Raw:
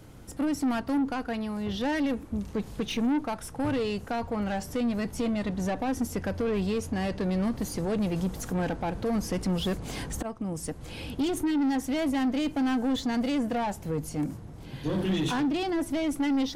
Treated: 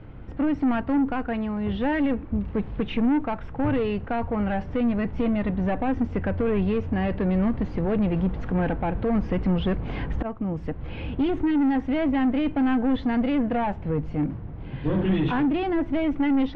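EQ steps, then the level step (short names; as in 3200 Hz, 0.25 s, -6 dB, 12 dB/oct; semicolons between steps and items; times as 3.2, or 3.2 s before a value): LPF 2700 Hz 24 dB/oct; low shelf 88 Hz +8.5 dB; +3.5 dB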